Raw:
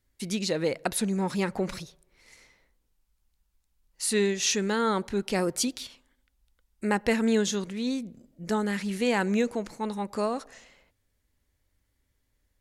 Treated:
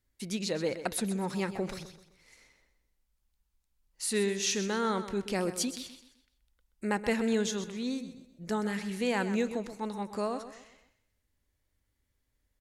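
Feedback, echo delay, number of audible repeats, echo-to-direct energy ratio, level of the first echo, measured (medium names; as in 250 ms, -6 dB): 37%, 128 ms, 3, -11.5 dB, -12.0 dB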